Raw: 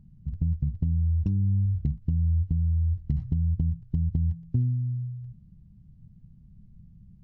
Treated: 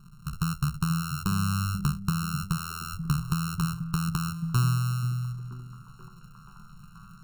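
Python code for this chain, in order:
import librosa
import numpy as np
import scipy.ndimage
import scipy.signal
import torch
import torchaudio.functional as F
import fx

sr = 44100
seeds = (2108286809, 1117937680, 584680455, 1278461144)

y = np.r_[np.sort(x[:len(x) // 32 * 32].reshape(-1, 32), axis=1).ravel(), x[len(x) // 32 * 32:]]
y = fx.fixed_phaser(y, sr, hz=400.0, stages=8)
y = fx.echo_stepped(y, sr, ms=482, hz=170.0, octaves=0.7, feedback_pct=70, wet_db=-6.5)
y = y * librosa.db_to_amplitude(4.0)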